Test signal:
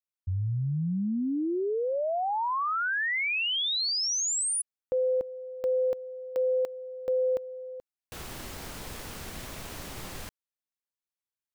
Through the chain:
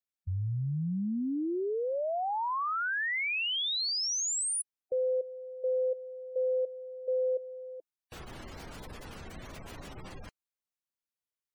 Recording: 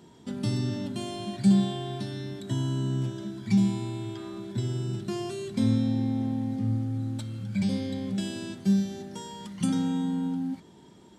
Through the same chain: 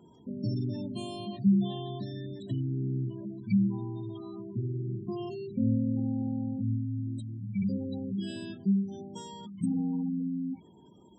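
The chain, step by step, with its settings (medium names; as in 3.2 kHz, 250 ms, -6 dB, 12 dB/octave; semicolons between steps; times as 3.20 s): spectral gate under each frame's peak -20 dB strong; trim -3 dB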